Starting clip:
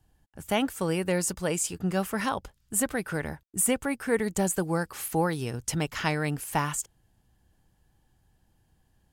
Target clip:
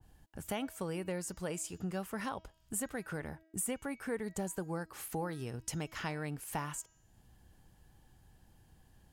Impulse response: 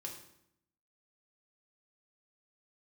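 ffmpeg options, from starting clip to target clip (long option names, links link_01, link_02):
-af "bandreject=frequency=321.2:width_type=h:width=4,bandreject=frequency=642.4:width_type=h:width=4,bandreject=frequency=963.6:width_type=h:width=4,bandreject=frequency=1284.8:width_type=h:width=4,bandreject=frequency=1606:width_type=h:width=4,bandreject=frequency=1927.2:width_type=h:width=4,bandreject=frequency=2248.4:width_type=h:width=4,bandreject=frequency=2569.6:width_type=h:width=4,bandreject=frequency=2890.8:width_type=h:width=4,bandreject=frequency=3212:width_type=h:width=4,bandreject=frequency=3533.2:width_type=h:width=4,bandreject=frequency=3854.4:width_type=h:width=4,bandreject=frequency=4175.6:width_type=h:width=4,bandreject=frequency=4496.8:width_type=h:width=4,bandreject=frequency=4818:width_type=h:width=4,bandreject=frequency=5139.2:width_type=h:width=4,bandreject=frequency=5460.4:width_type=h:width=4,bandreject=frequency=5781.6:width_type=h:width=4,bandreject=frequency=6102.8:width_type=h:width=4,bandreject=frequency=6424:width_type=h:width=4,bandreject=frequency=6745.2:width_type=h:width=4,bandreject=frequency=7066.4:width_type=h:width=4,acompressor=threshold=-51dB:ratio=2,adynamicequalizer=threshold=0.00158:dfrequency=1800:dqfactor=0.7:tfrequency=1800:tqfactor=0.7:attack=5:release=100:ratio=0.375:range=2:mode=cutabove:tftype=highshelf,volume=4dB"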